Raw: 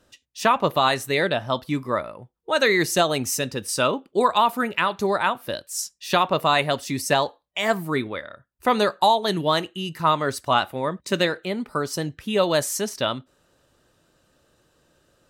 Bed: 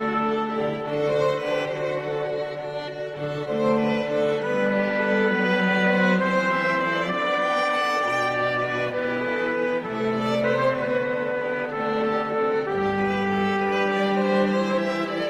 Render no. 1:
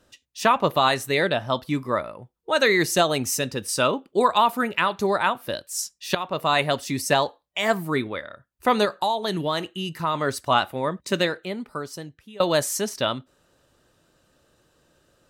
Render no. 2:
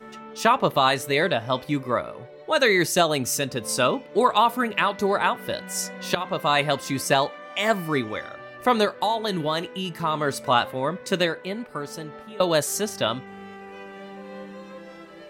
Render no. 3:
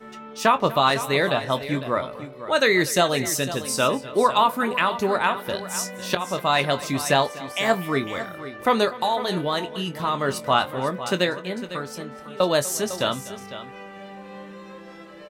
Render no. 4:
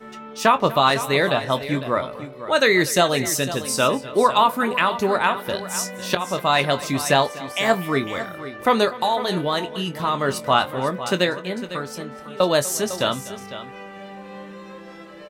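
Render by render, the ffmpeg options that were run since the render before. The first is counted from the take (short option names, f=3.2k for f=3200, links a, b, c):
-filter_complex "[0:a]asettb=1/sr,asplit=3[a][b][c];[a]atrim=end=8.854[d];[b]atrim=start=8.85:end=10.15,asetpts=PTS-STARTPTS,afade=t=in:d=0.004:c=qsin,afade=t=out:st=1.296:d=0.004:c=qsin,acompressor=threshold=-23dB:ratio=2:attack=3.2:release=140:knee=1:detection=peak[e];[c]atrim=start=10.146[f];[d][e]acrossfade=d=0.004:c1=hsin:c2=qsin[g];[g][f]acrossfade=d=0.004:c1=qsin:c2=hsin,asplit=3[h][i][j];[h]atrim=end=6.15,asetpts=PTS-STARTPTS,afade=t=out:st=6.146:d=0.004:c=hsin:silence=0.211349[k];[i]atrim=start=6.15:end=12.4,asetpts=PTS-STARTPTS,afade=t=in:d=0.47:silence=0.211349,afade=t=out:st=4.89:d=1.36:silence=0.0749894[l];[j]atrim=start=12.4,asetpts=PTS-STARTPTS,afade=t=in:d=0.004:c=hsin:silence=0.0749894[m];[k][l][m]concat=n=3:v=0:a=1"
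-filter_complex "[1:a]volume=-18dB[a];[0:a][a]amix=inputs=2:normalize=0"
-filter_complex "[0:a]asplit=2[a][b];[b]adelay=22,volume=-11dB[c];[a][c]amix=inputs=2:normalize=0,aecho=1:1:246|503:0.119|0.224"
-af "volume=2dB"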